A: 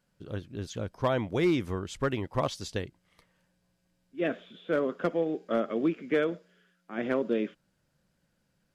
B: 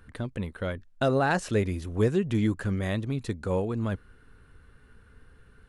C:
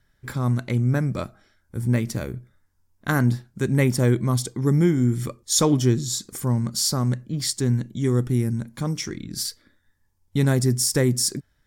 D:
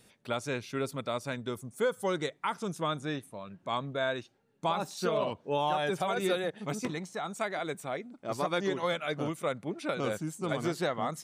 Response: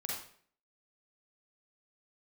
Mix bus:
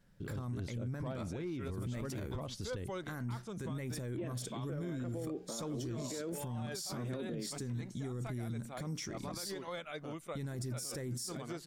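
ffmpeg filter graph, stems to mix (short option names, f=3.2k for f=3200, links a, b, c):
-filter_complex "[0:a]lowshelf=f=370:g=10.5,acompressor=threshold=-27dB:ratio=6,volume=-1.5dB[a];[2:a]volume=-8dB[b];[3:a]alimiter=limit=-23dB:level=0:latency=1:release=28,adelay=850,volume=-9.5dB[c];[a][b][c]amix=inputs=3:normalize=0,alimiter=level_in=8.5dB:limit=-24dB:level=0:latency=1:release=26,volume=-8.5dB"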